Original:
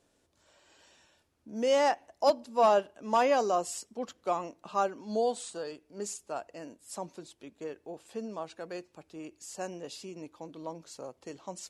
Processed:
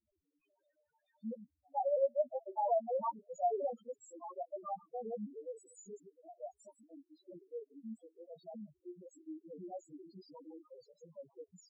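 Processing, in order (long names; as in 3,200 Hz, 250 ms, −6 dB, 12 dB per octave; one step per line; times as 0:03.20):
slices reordered back to front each 103 ms, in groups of 4
multi-voice chorus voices 4, 0.39 Hz, delay 14 ms, depth 4.4 ms
spectral peaks only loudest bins 2
level −2 dB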